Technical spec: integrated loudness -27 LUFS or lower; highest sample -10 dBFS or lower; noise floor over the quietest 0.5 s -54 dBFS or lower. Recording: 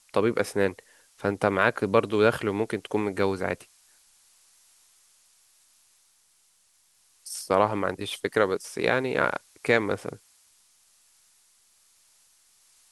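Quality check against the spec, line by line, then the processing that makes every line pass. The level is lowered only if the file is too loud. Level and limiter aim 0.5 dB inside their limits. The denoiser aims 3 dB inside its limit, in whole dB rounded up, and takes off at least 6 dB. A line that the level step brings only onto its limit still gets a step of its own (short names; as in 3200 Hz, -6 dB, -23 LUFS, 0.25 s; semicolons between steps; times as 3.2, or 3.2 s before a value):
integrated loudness -26.0 LUFS: fail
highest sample -5.0 dBFS: fail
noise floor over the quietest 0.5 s -65 dBFS: OK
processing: gain -1.5 dB; limiter -10.5 dBFS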